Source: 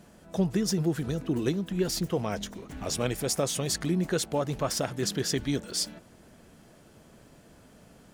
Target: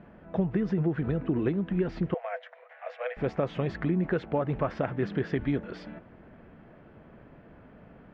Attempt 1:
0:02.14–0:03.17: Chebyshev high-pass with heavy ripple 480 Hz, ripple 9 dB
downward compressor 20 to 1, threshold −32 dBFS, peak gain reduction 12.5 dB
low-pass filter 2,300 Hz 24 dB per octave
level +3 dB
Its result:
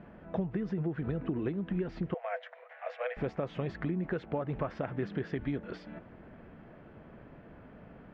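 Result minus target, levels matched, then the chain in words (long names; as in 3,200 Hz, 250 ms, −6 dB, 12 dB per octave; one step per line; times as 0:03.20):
downward compressor: peak gain reduction +6.5 dB
0:02.14–0:03.17: Chebyshev high-pass with heavy ripple 480 Hz, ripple 9 dB
downward compressor 20 to 1, threshold −25 dBFS, peak gain reduction 6 dB
low-pass filter 2,300 Hz 24 dB per octave
level +3 dB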